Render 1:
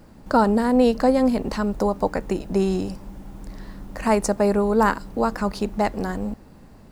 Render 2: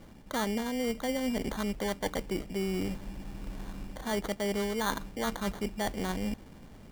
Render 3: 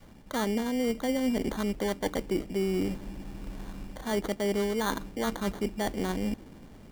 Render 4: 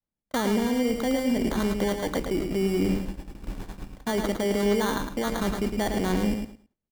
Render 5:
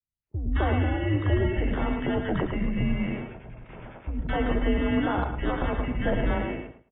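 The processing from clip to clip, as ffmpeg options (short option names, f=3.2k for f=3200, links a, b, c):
-af "bandreject=f=4.9k:w=5.7,areverse,acompressor=threshold=-26dB:ratio=6,areverse,acrusher=samples=17:mix=1:aa=0.000001,volume=-3dB"
-af "adynamicequalizer=threshold=0.00562:dfrequency=320:dqfactor=1.3:tfrequency=320:tqfactor=1.3:attack=5:release=100:ratio=0.375:range=3:mode=boostabove:tftype=bell"
-filter_complex "[0:a]agate=range=-48dB:threshold=-37dB:ratio=16:detection=peak,alimiter=level_in=2.5dB:limit=-24dB:level=0:latency=1:release=21,volume=-2.5dB,asplit=2[a][b];[b]aecho=0:1:108|216|324:0.501|0.0952|0.0181[c];[a][c]amix=inputs=2:normalize=0,volume=7.5dB"
-filter_complex "[0:a]acrossover=split=350|1500[a][b][c];[c]adelay=220[d];[b]adelay=260[e];[a][e][d]amix=inputs=3:normalize=0,highpass=f=190:t=q:w=0.5412,highpass=f=190:t=q:w=1.307,lowpass=f=2.9k:t=q:w=0.5176,lowpass=f=2.9k:t=q:w=0.7071,lowpass=f=2.9k:t=q:w=1.932,afreqshift=-160,volume=3dB" -ar 32000 -c:a aac -b:a 16k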